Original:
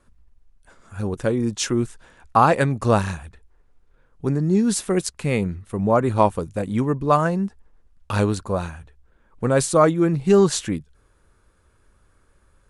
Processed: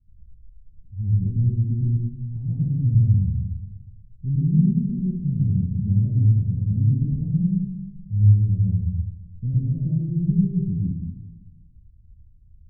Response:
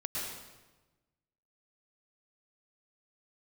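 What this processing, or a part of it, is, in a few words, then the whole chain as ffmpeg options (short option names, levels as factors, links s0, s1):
club heard from the street: -filter_complex "[0:a]alimiter=limit=0.316:level=0:latency=1:release=236,lowpass=f=150:w=0.5412,lowpass=f=150:w=1.3066[s0];[1:a]atrim=start_sample=2205[s1];[s0][s1]afir=irnorm=-1:irlink=0,volume=1.88"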